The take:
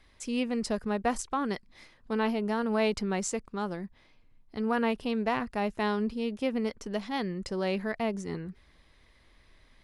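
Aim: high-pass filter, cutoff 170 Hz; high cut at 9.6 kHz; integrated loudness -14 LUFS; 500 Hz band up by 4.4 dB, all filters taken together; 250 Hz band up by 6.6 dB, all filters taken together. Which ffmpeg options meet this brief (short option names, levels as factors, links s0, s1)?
-af "highpass=170,lowpass=9600,equalizer=f=250:t=o:g=8.5,equalizer=f=500:t=o:g=3,volume=4.22"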